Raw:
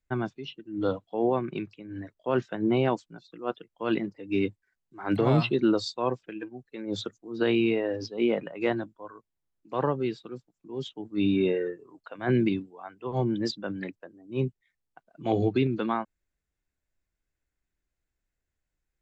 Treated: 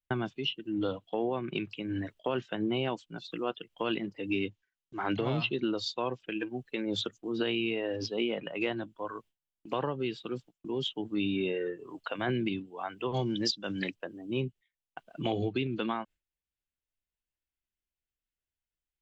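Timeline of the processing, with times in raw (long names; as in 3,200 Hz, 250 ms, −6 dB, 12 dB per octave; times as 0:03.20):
0:04.29–0:06.20: bad sample-rate conversion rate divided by 3×, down none, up filtered
0:13.14–0:13.94: parametric band 5,600 Hz +14.5 dB 1.2 octaves
whole clip: noise gate with hold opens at −51 dBFS; parametric band 3,000 Hz +11.5 dB 0.57 octaves; downward compressor 4 to 1, threshold −39 dBFS; level +8 dB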